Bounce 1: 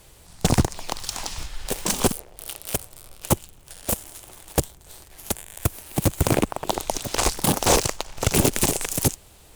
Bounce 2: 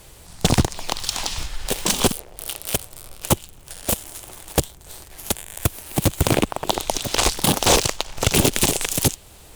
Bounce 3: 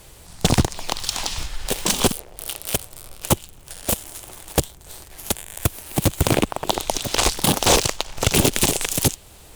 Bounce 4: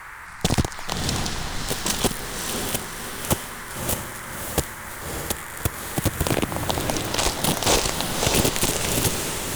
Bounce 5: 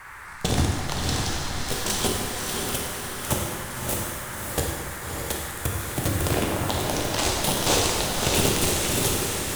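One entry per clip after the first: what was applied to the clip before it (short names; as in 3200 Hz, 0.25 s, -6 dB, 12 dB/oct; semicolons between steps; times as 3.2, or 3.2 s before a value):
dynamic EQ 3400 Hz, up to +6 dB, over -41 dBFS, Q 1.4; in parallel at -2 dB: compressor, threshold -28 dBFS, peak gain reduction 15 dB
nothing audible
band noise 860–2100 Hz -36 dBFS; diffused feedback echo 0.589 s, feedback 46%, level -4 dB; gain -4 dB
plate-style reverb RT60 1.6 s, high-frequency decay 0.95×, DRR -1 dB; gain -4.5 dB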